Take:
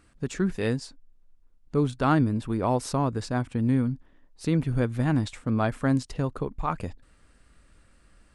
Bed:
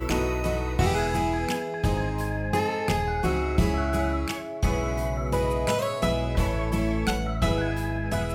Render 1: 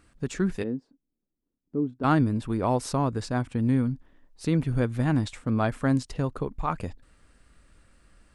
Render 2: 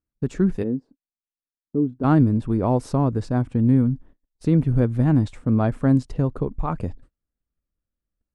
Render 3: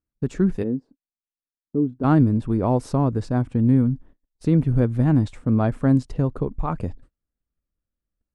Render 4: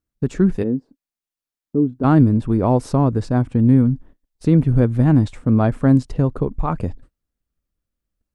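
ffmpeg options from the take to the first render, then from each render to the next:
-filter_complex "[0:a]asplit=3[s0][s1][s2];[s0]afade=t=out:st=0.62:d=0.02[s3];[s1]bandpass=f=280:t=q:w=1.9,afade=t=in:st=0.62:d=0.02,afade=t=out:st=2.03:d=0.02[s4];[s2]afade=t=in:st=2.03:d=0.02[s5];[s3][s4][s5]amix=inputs=3:normalize=0"
-af "agate=range=0.0224:threshold=0.00355:ratio=16:detection=peak,tiltshelf=f=970:g=7"
-af anull
-af "volume=1.58,alimiter=limit=0.708:level=0:latency=1"

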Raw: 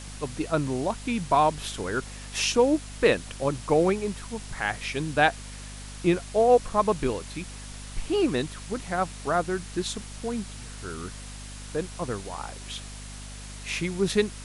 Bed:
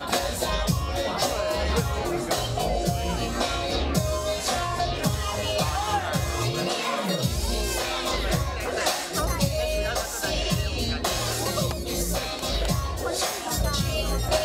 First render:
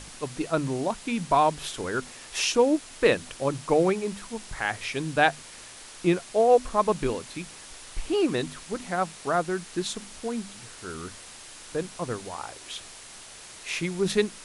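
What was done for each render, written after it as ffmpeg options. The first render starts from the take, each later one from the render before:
-af "bandreject=f=50:t=h:w=6,bandreject=f=100:t=h:w=6,bandreject=f=150:t=h:w=6,bandreject=f=200:t=h:w=6,bandreject=f=250:t=h:w=6"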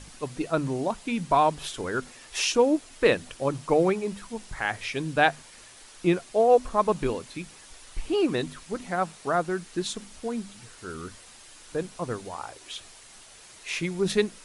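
-af "afftdn=nr=6:nf=-45"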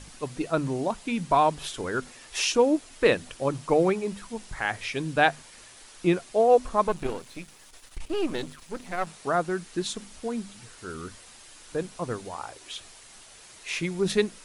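-filter_complex "[0:a]asettb=1/sr,asplit=3[s0][s1][s2];[s0]atrim=end=6.884[s3];[s1]atrim=start=6.88:end=9.07,asetpts=PTS-STARTPTS,afade=t=in:d=0.004:c=qsin,afade=t=out:st=2.186:d=0.004:c=qsin,aeval=exprs='if(lt(val(0),0),0.251*val(0),val(0))':c=same[s4];[s2]atrim=start=9.066[s5];[s3][s4]acrossfade=d=0.004:c1=hsin:c2=qsin[s6];[s6][s5]acrossfade=d=0.004:c1=qsin:c2=hsin"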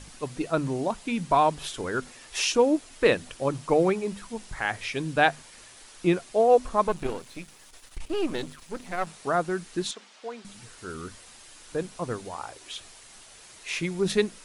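-filter_complex "[0:a]asettb=1/sr,asplit=3[s0][s1][s2];[s0]atrim=end=9.914[s3];[s1]atrim=start=9.91:end=10.45,asetpts=PTS-STARTPTS,afade=t=in:d=0.004:c=qsin,afade=t=out:st=0.536:d=0.004:c=qsin,highpass=540,lowpass=4700[s4];[s2]atrim=start=10.446[s5];[s3][s4]acrossfade=d=0.004:c1=hsin:c2=qsin[s6];[s6][s5]acrossfade=d=0.004:c1=qsin:c2=hsin"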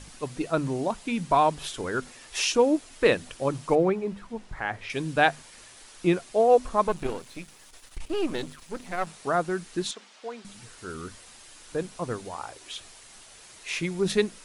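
-filter_complex "[0:a]asettb=1/sr,asplit=3[s0][s1][s2];[s0]atrim=end=3.754[s3];[s1]atrim=start=3.75:end=4.9,asetpts=PTS-STARTPTS,afade=t=in:d=0.004:c=qsin,afade=t=out:st=1.146:d=0.004:c=qsin,lowpass=f=1600:p=1[s4];[s2]atrim=start=4.896[s5];[s3][s4]acrossfade=d=0.004:c1=hsin:c2=qsin[s6];[s6][s5]acrossfade=d=0.004:c1=qsin:c2=hsin"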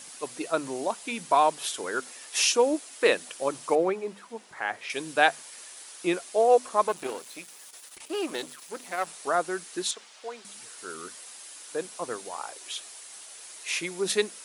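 -af "highpass=370,highshelf=f=7800:g=12"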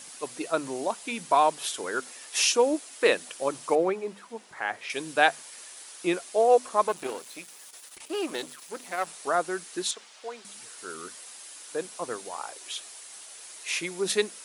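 -af anull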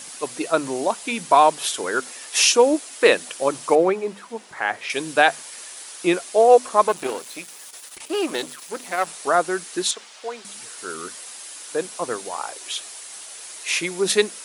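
-af "volume=2.24,alimiter=limit=0.891:level=0:latency=1"

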